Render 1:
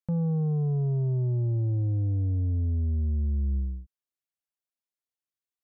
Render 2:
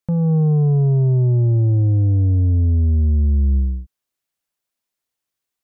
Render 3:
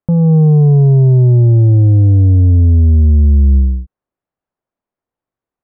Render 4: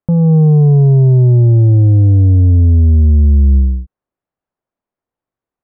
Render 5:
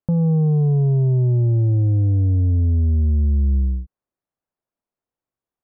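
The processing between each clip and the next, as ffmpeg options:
-af "dynaudnorm=f=170:g=3:m=1.41,volume=2.51"
-af "lowpass=1000,volume=2.37"
-af anull
-af "acompressor=threshold=0.316:ratio=6,volume=0.531"

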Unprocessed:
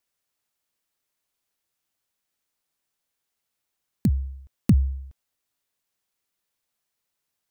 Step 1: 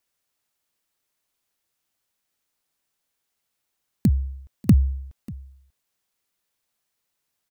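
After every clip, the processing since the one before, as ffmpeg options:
-af "aecho=1:1:590:0.0891,volume=1.33"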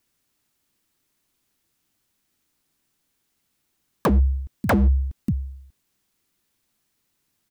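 -filter_complex "[0:a]lowshelf=f=400:t=q:w=1.5:g=6.5,asplit=2[s0][s1];[s1]acompressor=threshold=0.141:ratio=6,volume=0.794[s2];[s0][s2]amix=inputs=2:normalize=0,aeval=exprs='0.251*(abs(mod(val(0)/0.251+3,4)-2)-1)':c=same"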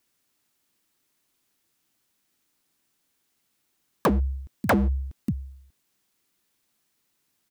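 -af "lowshelf=f=130:g=-9"

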